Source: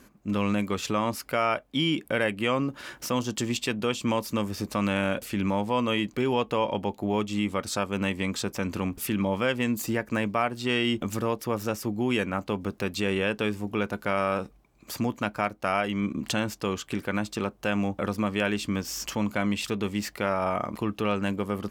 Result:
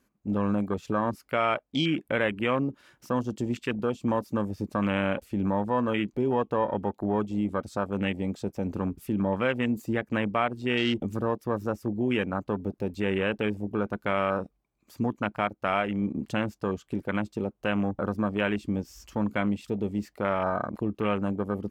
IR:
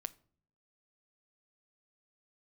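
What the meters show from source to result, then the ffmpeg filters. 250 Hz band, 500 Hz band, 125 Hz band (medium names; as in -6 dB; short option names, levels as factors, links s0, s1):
0.0 dB, 0.0 dB, 0.0 dB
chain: -af "afwtdn=0.0282"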